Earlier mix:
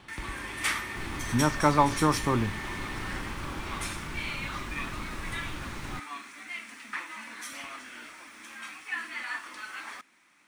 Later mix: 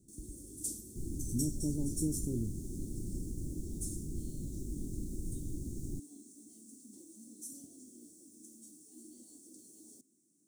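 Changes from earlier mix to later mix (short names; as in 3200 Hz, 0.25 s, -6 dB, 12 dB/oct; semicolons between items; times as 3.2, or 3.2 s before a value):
speech -7.5 dB; first sound: add HPF 110 Hz; master: add elliptic band-stop 350–7100 Hz, stop band 60 dB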